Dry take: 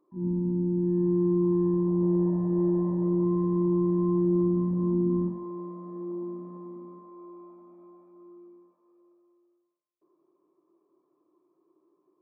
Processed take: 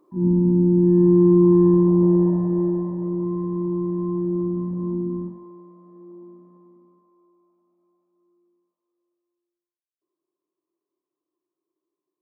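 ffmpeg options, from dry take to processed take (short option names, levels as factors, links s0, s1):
-af "volume=3.16,afade=t=out:st=1.73:d=1.17:silence=0.316228,afade=t=out:st=4.93:d=0.71:silence=0.398107,afade=t=out:st=6.28:d=1.1:silence=0.375837"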